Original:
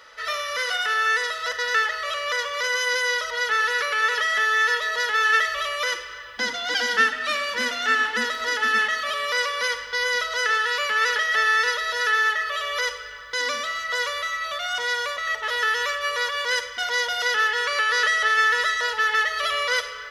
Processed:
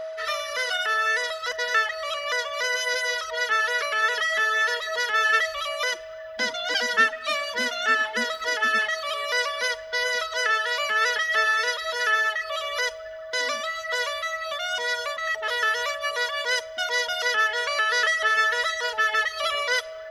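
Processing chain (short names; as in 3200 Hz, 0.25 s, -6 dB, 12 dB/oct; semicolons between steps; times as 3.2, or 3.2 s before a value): whine 640 Hz -30 dBFS; reverb removal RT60 1.3 s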